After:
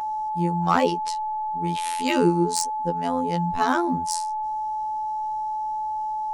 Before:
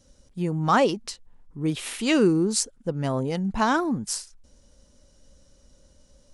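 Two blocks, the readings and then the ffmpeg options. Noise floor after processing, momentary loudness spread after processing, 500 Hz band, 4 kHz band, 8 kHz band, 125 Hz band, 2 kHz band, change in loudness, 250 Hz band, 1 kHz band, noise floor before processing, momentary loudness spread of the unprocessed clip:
−28 dBFS, 7 LU, −0.5 dB, −1.0 dB, −1.0 dB, −0.5 dB, −1.0 dB, 0.0 dB, −1.0 dB, +8.0 dB, −59 dBFS, 11 LU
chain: -af "aeval=exprs='val(0)+0.0447*sin(2*PI*870*n/s)':channel_layout=same,afftfilt=real='hypot(re,im)*cos(PI*b)':imag='0':win_size=2048:overlap=0.75,asoftclip=type=hard:threshold=-10dB,volume=3dB"

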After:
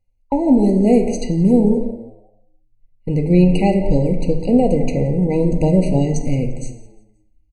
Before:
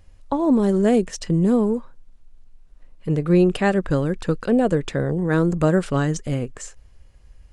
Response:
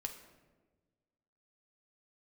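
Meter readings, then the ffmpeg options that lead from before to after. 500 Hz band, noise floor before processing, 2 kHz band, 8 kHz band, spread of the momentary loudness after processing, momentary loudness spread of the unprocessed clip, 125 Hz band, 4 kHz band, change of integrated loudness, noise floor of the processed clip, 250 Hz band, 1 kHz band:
+3.0 dB, −50 dBFS, −6.5 dB, can't be measured, 10 LU, 10 LU, +4.5 dB, −0.5 dB, +4.0 dB, −59 dBFS, +5.0 dB, +1.5 dB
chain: -filter_complex "[0:a]bandreject=frequency=3700:width=8.5,agate=range=-26dB:threshold=-35dB:ratio=16:detection=peak,asubboost=boost=2:cutoff=180,asplit=2[link_01][link_02];[link_02]asoftclip=type=tanh:threshold=-18.5dB,volume=-9dB[link_03];[link_01][link_03]amix=inputs=2:normalize=0,asplit=4[link_04][link_05][link_06][link_07];[link_05]adelay=175,afreqshift=100,volume=-22.5dB[link_08];[link_06]adelay=350,afreqshift=200,volume=-31.1dB[link_09];[link_07]adelay=525,afreqshift=300,volume=-39.8dB[link_10];[link_04][link_08][link_09][link_10]amix=inputs=4:normalize=0[link_11];[1:a]atrim=start_sample=2205,afade=type=out:start_time=0.39:duration=0.01,atrim=end_sample=17640[link_12];[link_11][link_12]afir=irnorm=-1:irlink=0,afftfilt=real='re*eq(mod(floor(b*sr/1024/970),2),0)':imag='im*eq(mod(floor(b*sr/1024/970),2),0)':win_size=1024:overlap=0.75,volume=4dB"

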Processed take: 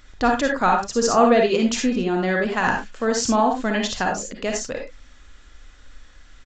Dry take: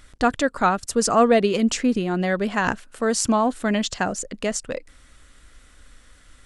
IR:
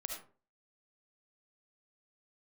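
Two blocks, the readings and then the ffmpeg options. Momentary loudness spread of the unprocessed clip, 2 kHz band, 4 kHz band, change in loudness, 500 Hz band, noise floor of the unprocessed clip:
9 LU, +2.5 dB, +1.5 dB, +1.0 dB, +1.5 dB, −53 dBFS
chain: -filter_complex "[0:a]bandreject=frequency=50:width_type=h:width=6,bandreject=frequency=100:width_type=h:width=6,bandreject=frequency=150:width_type=h:width=6,bandreject=frequency=200:width_type=h:width=6[link_01];[1:a]atrim=start_sample=2205,afade=type=out:start_time=0.2:duration=0.01,atrim=end_sample=9261,asetrate=57330,aresample=44100[link_02];[link_01][link_02]afir=irnorm=-1:irlink=0,aresample=16000,aresample=44100,volume=5dB"

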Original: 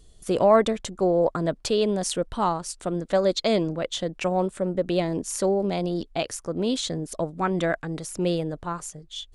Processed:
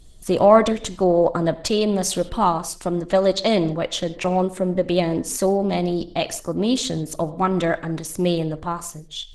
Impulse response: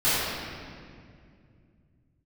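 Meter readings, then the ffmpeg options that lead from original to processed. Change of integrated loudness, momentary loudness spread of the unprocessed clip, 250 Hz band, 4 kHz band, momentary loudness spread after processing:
+4.0 dB, 8 LU, +5.0 dB, +4.0 dB, 8 LU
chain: -filter_complex "[0:a]equalizer=frequency=450:width_type=o:width=0.4:gain=-4.5,bandreject=frequency=1500:width=11,asplit=2[link_01][link_02];[1:a]atrim=start_sample=2205,afade=type=out:start_time=0.22:duration=0.01,atrim=end_sample=10143[link_03];[link_02][link_03]afir=irnorm=-1:irlink=0,volume=-28.5dB[link_04];[link_01][link_04]amix=inputs=2:normalize=0,volume=5.5dB" -ar 48000 -c:a libopus -b:a 16k

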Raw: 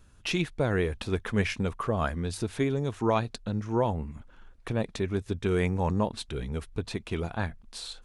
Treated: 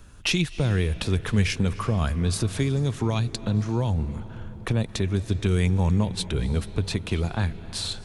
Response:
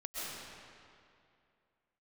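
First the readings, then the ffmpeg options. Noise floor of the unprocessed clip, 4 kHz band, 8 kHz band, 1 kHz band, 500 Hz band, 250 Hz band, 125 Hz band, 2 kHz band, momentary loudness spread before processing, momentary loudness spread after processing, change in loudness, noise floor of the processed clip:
−55 dBFS, +8.0 dB, +9.0 dB, −2.5 dB, −1.5 dB, +4.0 dB, +8.0 dB, +2.5 dB, 8 LU, 6 LU, +4.5 dB, −40 dBFS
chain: -filter_complex "[0:a]acrossover=split=180|3000[link_01][link_02][link_03];[link_02]acompressor=threshold=-38dB:ratio=6[link_04];[link_01][link_04][link_03]amix=inputs=3:normalize=0,asplit=2[link_05][link_06];[1:a]atrim=start_sample=2205,asetrate=22491,aresample=44100[link_07];[link_06][link_07]afir=irnorm=-1:irlink=0,volume=-20.5dB[link_08];[link_05][link_08]amix=inputs=2:normalize=0,volume=8.5dB"

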